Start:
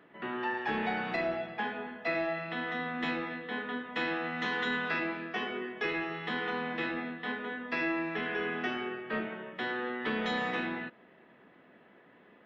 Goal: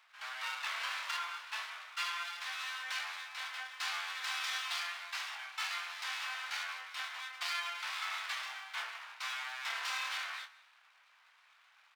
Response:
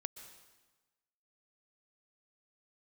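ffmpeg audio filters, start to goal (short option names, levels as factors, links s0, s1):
-filter_complex "[0:a]aeval=exprs='abs(val(0))':c=same,asplit=2[s0][s1];[s1]adelay=27,volume=0.398[s2];[s0][s2]amix=inputs=2:normalize=0,asplit=2[s3][s4];[1:a]atrim=start_sample=2205,afade=t=out:st=0.4:d=0.01,atrim=end_sample=18081[s5];[s4][s5]afir=irnorm=-1:irlink=0,volume=0.794[s6];[s3][s6]amix=inputs=2:normalize=0,asetrate=45938,aresample=44100,highpass=f=1000:w=0.5412,highpass=f=1000:w=1.3066,volume=0.631"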